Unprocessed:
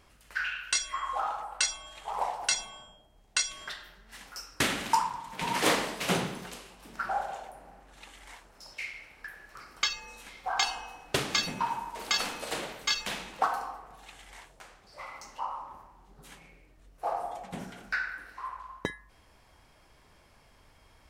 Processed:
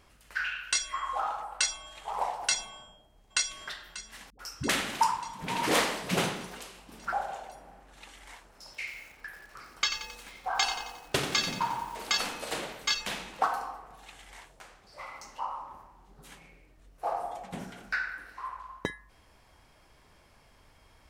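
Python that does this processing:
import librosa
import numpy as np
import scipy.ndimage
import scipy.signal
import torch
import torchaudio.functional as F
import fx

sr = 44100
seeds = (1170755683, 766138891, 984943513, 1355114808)

y = fx.echo_throw(x, sr, start_s=2.71, length_s=0.95, ms=590, feedback_pct=70, wet_db=-14.5)
y = fx.dispersion(y, sr, late='highs', ms=91.0, hz=370.0, at=(4.3, 7.13))
y = fx.echo_crushed(y, sr, ms=89, feedback_pct=55, bits=8, wet_db=-9.0, at=(8.64, 11.97))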